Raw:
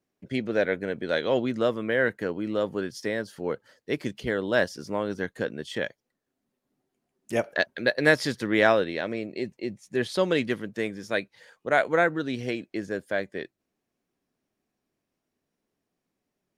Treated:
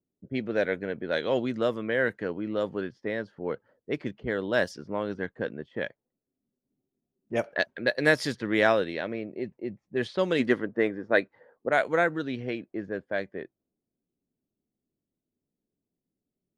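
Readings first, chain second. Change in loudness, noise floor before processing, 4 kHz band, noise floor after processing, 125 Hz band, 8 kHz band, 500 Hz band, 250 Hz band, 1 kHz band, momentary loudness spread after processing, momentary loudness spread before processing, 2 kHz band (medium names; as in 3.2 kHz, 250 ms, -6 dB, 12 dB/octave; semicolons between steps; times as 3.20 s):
-1.5 dB, -83 dBFS, -3.0 dB, under -85 dBFS, -2.0 dB, -5.0 dB, -1.5 dB, -1.5 dB, -2.0 dB, 11 LU, 11 LU, -1.5 dB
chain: level-controlled noise filter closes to 380 Hz, open at -20.5 dBFS; time-frequency box 10.40–11.68 s, 220–2100 Hz +7 dB; trim -2 dB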